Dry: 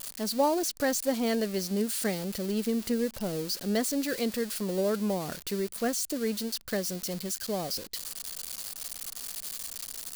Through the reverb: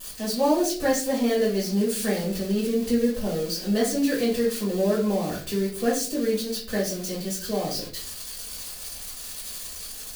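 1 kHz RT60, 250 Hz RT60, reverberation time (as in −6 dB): 0.35 s, 0.65 s, 0.45 s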